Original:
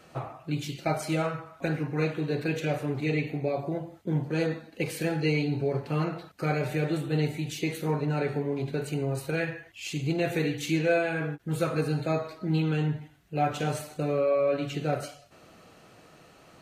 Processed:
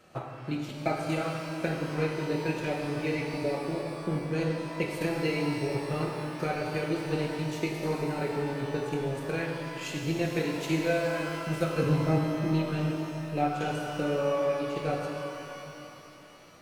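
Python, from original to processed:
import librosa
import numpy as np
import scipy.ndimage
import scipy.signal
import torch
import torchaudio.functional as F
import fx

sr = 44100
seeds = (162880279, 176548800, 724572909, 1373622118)

y = fx.riaa(x, sr, side='playback', at=(11.81, 12.3), fade=0.02)
y = fx.transient(y, sr, attack_db=5, sustain_db=-10)
y = fx.rev_shimmer(y, sr, seeds[0], rt60_s=2.9, semitones=12, shimmer_db=-8, drr_db=0.5)
y = y * librosa.db_to_amplitude(-5.0)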